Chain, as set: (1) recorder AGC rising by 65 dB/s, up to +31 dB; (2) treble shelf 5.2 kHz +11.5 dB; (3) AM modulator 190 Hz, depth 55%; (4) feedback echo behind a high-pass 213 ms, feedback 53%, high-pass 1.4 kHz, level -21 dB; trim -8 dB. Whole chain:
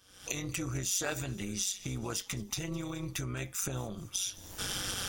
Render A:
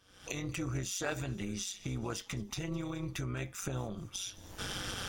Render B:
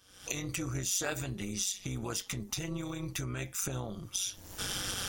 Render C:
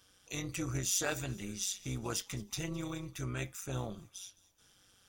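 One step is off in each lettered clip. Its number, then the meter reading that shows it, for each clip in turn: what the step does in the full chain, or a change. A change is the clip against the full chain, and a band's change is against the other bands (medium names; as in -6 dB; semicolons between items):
2, 8 kHz band -7.0 dB; 4, echo-to-direct -22.5 dB to none; 1, momentary loudness spread change +6 LU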